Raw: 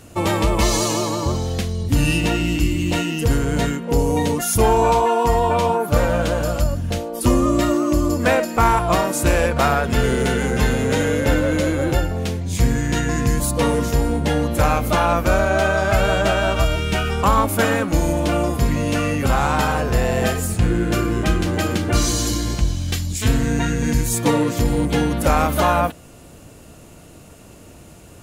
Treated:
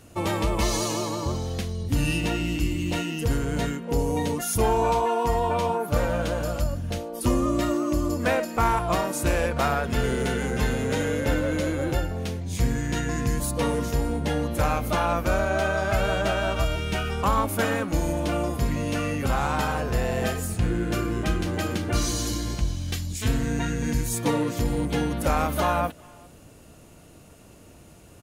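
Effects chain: band-stop 7.5 kHz, Q 22; speakerphone echo 400 ms, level -25 dB; trim -6.5 dB

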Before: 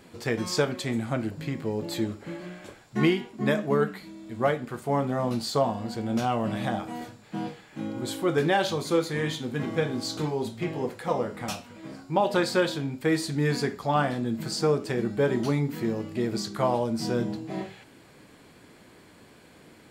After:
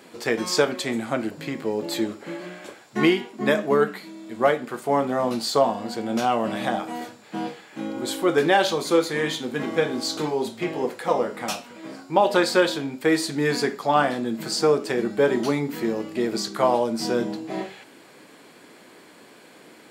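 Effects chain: high-pass 260 Hz 12 dB/octave; trim +5.5 dB

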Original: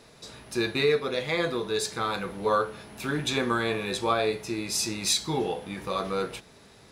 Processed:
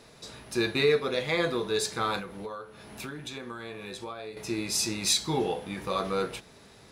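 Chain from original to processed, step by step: 2.19–4.37 s: compression 12:1, threshold -36 dBFS, peak gain reduction 16.5 dB

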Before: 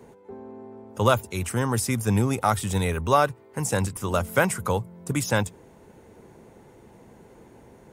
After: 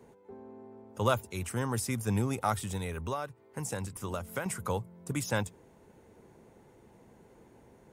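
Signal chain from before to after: 2.63–4.46 s: compression 4:1, threshold -25 dBFS, peak gain reduction 10 dB; trim -7.5 dB

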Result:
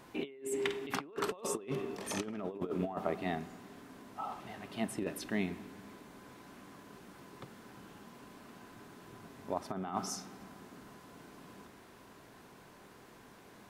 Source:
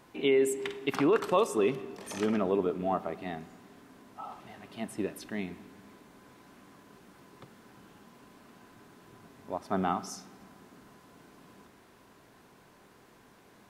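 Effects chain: compressor with a negative ratio -33 dBFS, ratio -0.5; trim -2.5 dB

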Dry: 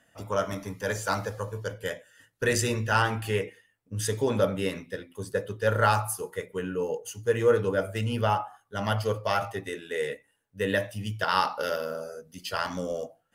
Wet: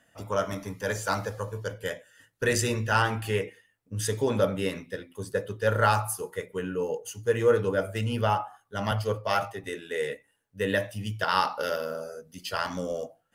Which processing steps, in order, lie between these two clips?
8.91–9.64 s: three bands expanded up and down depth 70%

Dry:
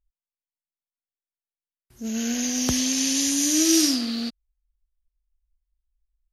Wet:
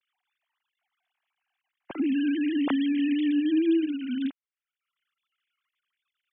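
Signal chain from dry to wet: formants replaced by sine waves; three bands compressed up and down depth 100%

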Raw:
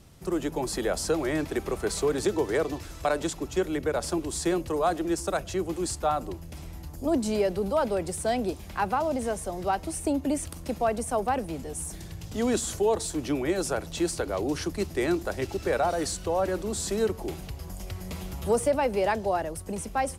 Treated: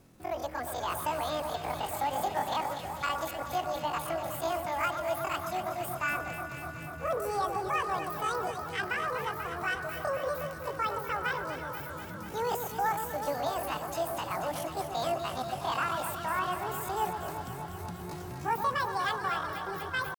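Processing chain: median filter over 3 samples; pitch shift +11.5 st; echo whose repeats swap between lows and highs 122 ms, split 1.6 kHz, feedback 87%, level -7 dB; trim -6 dB

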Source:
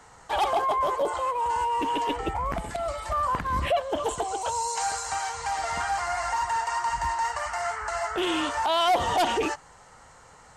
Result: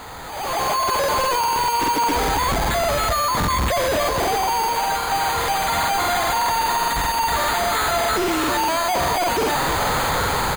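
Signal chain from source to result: one-bit comparator; careless resampling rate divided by 8×, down filtered, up hold; on a send: delay 265 ms -8 dB; on the sum: level rider gain up to 16 dB; crackling interface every 0.20 s, samples 2048, repeat, from 0.59 s; trim -8 dB

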